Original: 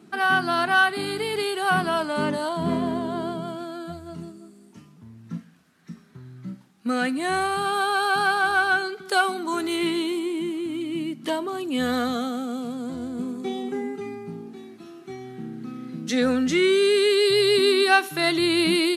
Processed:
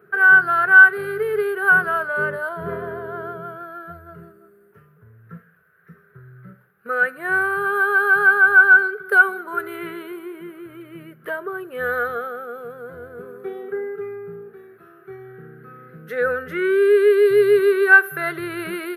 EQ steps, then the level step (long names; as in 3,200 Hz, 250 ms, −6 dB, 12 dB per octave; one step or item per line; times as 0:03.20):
drawn EQ curve 150 Hz 0 dB, 280 Hz −23 dB, 420 Hz +9 dB, 890 Hz −9 dB, 1,500 Hz +13 dB, 2,200 Hz −5 dB, 3,800 Hz −20 dB, 7,300 Hz −28 dB, 13,000 Hz +8 dB
dynamic equaliser 7,200 Hz, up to +5 dB, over −38 dBFS, Q 0.8
−1.0 dB